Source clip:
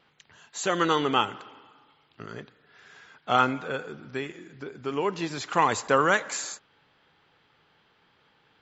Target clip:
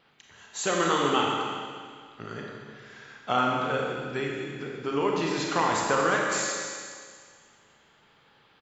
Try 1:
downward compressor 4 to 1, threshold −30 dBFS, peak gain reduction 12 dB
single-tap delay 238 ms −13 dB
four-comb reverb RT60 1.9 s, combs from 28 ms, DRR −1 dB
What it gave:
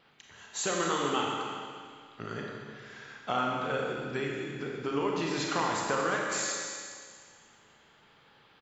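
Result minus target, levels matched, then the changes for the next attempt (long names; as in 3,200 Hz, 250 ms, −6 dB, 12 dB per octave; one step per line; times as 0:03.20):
downward compressor: peak gain reduction +5.5 dB
change: downward compressor 4 to 1, threshold −22.5 dBFS, peak gain reduction 6.5 dB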